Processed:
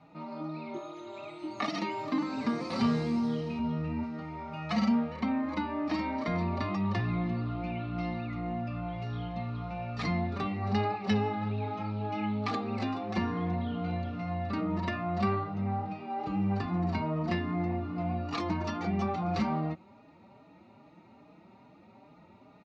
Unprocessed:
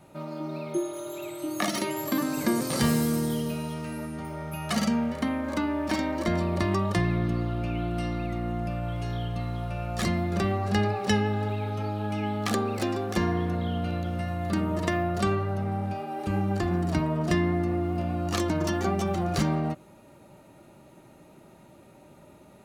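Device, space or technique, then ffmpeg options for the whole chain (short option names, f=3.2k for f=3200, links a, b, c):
barber-pole flanger into a guitar amplifier: -filter_complex "[0:a]asettb=1/sr,asplit=3[a][b][c];[a]atrim=end=3.594[d];[b]atrim=start=3.59:end=4.03,asetpts=PTS-STARTPTS,afade=t=in:d=0.004:c=qsin,afade=t=out:st=0.436:d=0.004:c=qsin,aemphasis=mode=reproduction:type=bsi[e];[c]atrim=start=4.026[f];[d][e]acrossfade=d=0.004:c1=hsin:c2=qsin[g];[g][f]acrossfade=d=0.004:c1=qsin:c2=hsin,asplit=2[h][i];[i]adelay=4.5,afreqshift=2.4[j];[h][j]amix=inputs=2:normalize=1,asoftclip=type=tanh:threshold=-19dB,highpass=110,equalizer=f=140:t=q:w=4:g=-9,equalizer=f=360:t=q:w=4:g=-9,equalizer=f=570:t=q:w=4:g=-8,equalizer=f=1.6k:t=q:w=4:g=-9,equalizer=f=3.2k:t=q:w=4:g=-9,lowpass=f=4.1k:w=0.5412,lowpass=f=4.1k:w=1.3066,volume=3.5dB"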